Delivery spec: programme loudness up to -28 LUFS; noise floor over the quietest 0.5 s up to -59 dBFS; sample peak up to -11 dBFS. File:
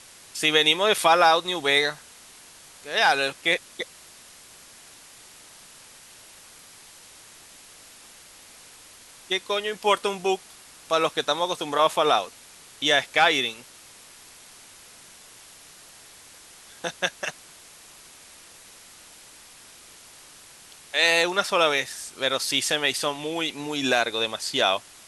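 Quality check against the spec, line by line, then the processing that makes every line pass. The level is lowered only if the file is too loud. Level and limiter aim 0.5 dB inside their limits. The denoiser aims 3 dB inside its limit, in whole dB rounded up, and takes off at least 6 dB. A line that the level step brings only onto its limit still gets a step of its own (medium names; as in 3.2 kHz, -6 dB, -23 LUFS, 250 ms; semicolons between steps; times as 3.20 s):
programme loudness -23.0 LUFS: fail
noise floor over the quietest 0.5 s -49 dBFS: fail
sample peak -5.0 dBFS: fail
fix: noise reduction 8 dB, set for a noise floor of -49 dBFS; trim -5.5 dB; peak limiter -11.5 dBFS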